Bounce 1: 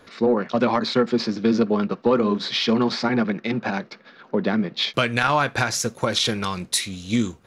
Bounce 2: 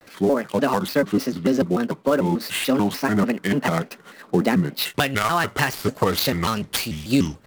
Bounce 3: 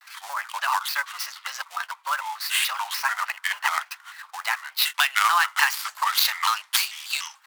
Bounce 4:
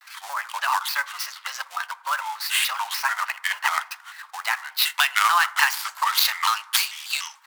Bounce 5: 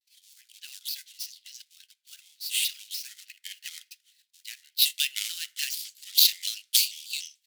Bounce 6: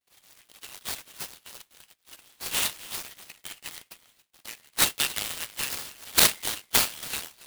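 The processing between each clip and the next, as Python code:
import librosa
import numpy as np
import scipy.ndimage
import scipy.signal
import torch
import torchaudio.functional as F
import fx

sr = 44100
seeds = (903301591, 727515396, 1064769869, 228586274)

y1 = fx.dead_time(x, sr, dead_ms=0.057)
y1 = fx.rider(y1, sr, range_db=4, speed_s=0.5)
y1 = fx.vibrato_shape(y1, sr, shape='square', rate_hz=3.4, depth_cents=250.0)
y1 = y1 * 10.0 ** (1.0 / 20.0)
y2 = scipy.signal.sosfilt(scipy.signal.butter(8, 900.0, 'highpass', fs=sr, output='sos'), y1)
y2 = y2 * 10.0 ** (3.0 / 20.0)
y3 = fx.rev_fdn(y2, sr, rt60_s=1.0, lf_ratio=1.0, hf_ratio=0.3, size_ms=19.0, drr_db=16.5)
y3 = y3 * 10.0 ** (1.0 / 20.0)
y4 = scipy.signal.sosfilt(scipy.signal.cheby2(4, 50, 1200.0, 'highpass', fs=sr, output='sos'), y3)
y4 = fx.band_widen(y4, sr, depth_pct=70)
y4 = y4 * 10.0 ** (-3.5 / 20.0)
y5 = y4 + 10.0 ** (-18.0 / 20.0) * np.pad(y4, (int(279 * sr / 1000.0), 0))[:len(y4)]
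y5 = fx.noise_mod_delay(y5, sr, seeds[0], noise_hz=5600.0, depth_ms=0.052)
y5 = y5 * 10.0 ** (1.0 / 20.0)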